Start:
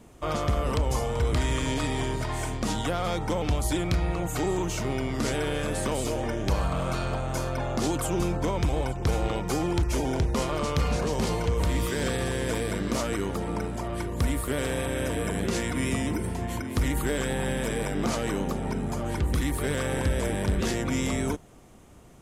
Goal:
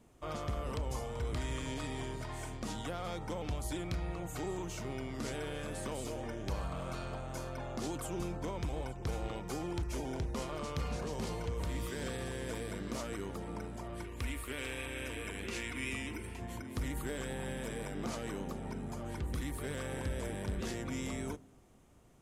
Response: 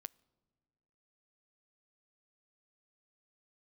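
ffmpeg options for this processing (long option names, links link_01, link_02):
-filter_complex "[0:a]asettb=1/sr,asplit=3[link_01][link_02][link_03];[link_01]atrim=end=14.044[link_04];[link_02]atrim=start=14.04:end=16.4,asetpts=PTS-STARTPTS,afade=type=in:duration=0.004:curve=qsin,afade=type=out:start_time=2.356:duration=0.004:curve=qsin,equalizer=frequency=160:width_type=o:width=0.67:gain=-11,equalizer=frequency=630:width_type=o:width=0.67:gain=-6,equalizer=frequency=2500:width_type=o:width=0.67:gain=10[link_05];[link_03]atrim=start=16.396[link_06];[link_04][link_05]acrossfade=duration=0.004:curve1=hsin:curve2=qsin[link_07];[link_07][link_06]acrossfade=duration=0.004:curve1=qsin:curve2=hsin[link_08];[1:a]atrim=start_sample=2205[link_09];[link_08][link_09]afir=irnorm=-1:irlink=0,volume=-6dB"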